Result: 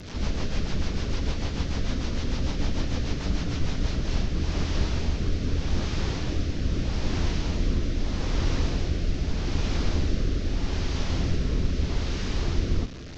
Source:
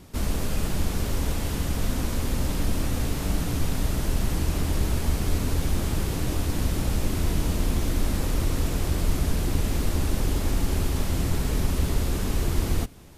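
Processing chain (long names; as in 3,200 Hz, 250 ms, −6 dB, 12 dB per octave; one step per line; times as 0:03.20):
linear delta modulator 32 kbit/s, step −31.5 dBFS
rotating-speaker cabinet horn 6.7 Hz, later 0.8 Hz, at 0:03.56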